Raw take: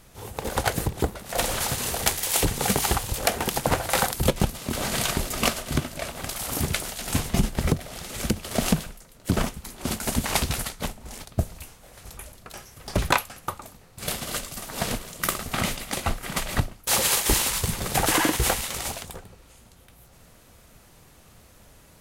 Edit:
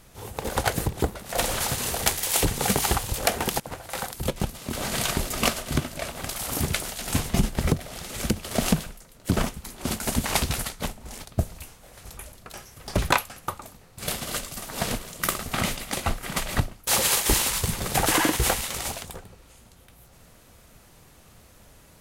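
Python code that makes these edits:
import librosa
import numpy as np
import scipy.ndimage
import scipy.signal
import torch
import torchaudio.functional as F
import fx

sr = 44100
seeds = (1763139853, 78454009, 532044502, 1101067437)

y = fx.edit(x, sr, fx.fade_in_from(start_s=3.6, length_s=1.58, floor_db=-17.0), tone=tone)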